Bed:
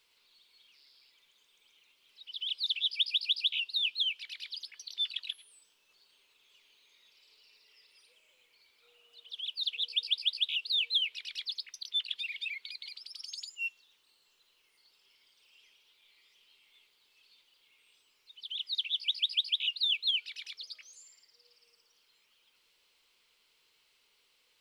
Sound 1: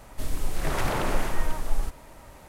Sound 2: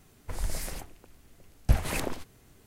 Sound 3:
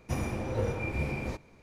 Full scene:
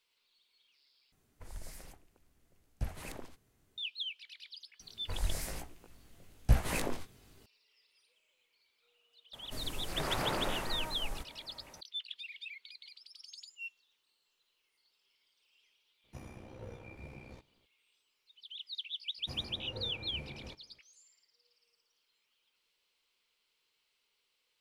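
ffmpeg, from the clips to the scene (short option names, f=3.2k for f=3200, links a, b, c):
-filter_complex "[2:a]asplit=2[a][b];[3:a]asplit=2[c][d];[0:a]volume=-8.5dB[e];[b]flanger=delay=16.5:depth=5.6:speed=1.1[f];[1:a]lowshelf=f=64:g=-11.5[g];[c]tremolo=f=63:d=0.621[h];[e]asplit=2[i][j];[i]atrim=end=1.124[k];[a]atrim=end=2.66,asetpts=PTS-STARTPTS,volume=-14dB[l];[j]atrim=start=3.776[m];[f]atrim=end=2.66,asetpts=PTS-STARTPTS,afade=t=in:d=0.004:c=hsin,afade=t=out:st=2.656:d=0.004:c=hsin,adelay=4800[n];[g]atrim=end=2.48,asetpts=PTS-STARTPTS,volume=-6dB,afade=t=in:d=0.004:c=hsin,afade=t=out:st=2.476:d=0.004:c=hsin,adelay=9330[o];[h]atrim=end=1.62,asetpts=PTS-STARTPTS,volume=-14.5dB,afade=t=in:d=0.004:c=hsin,afade=t=out:st=1.616:d=0.004:c=hsin,adelay=707364S[p];[d]atrim=end=1.62,asetpts=PTS-STARTPTS,volume=-14dB,afade=t=in:d=0.004:c=hsin,afade=t=out:st=1.616:d=0.004:c=hsin,adelay=19180[q];[k][l]acrossfade=d=0.004:c1=hsin:c2=hsin[r];[r][m]acrossfade=d=0.004:c1=hsin:c2=hsin[s];[s][n][o][p][q]amix=inputs=5:normalize=0"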